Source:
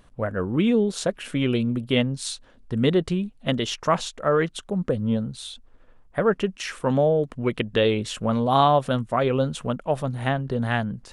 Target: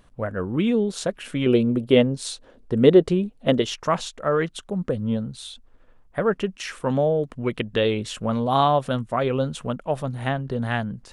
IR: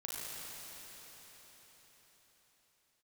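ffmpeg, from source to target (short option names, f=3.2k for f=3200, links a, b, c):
-filter_complex "[0:a]asettb=1/sr,asplit=3[a][b][c];[a]atrim=end=1.464[d];[b]atrim=start=1.46:end=3.62,asetpts=PTS-STARTPTS,afade=t=in:d=0.004:c=qsin,afade=t=out:st=2.156:d=0.004:c=qsin,equalizer=f=450:w=0.87:g=10[e];[c]atrim=start=3.616[f];[d][e]acrossfade=d=0.004:c1=hsin:c2=qsin[g];[g][f]acrossfade=d=0.004:c1=qsin:c2=hsin,volume=-1dB"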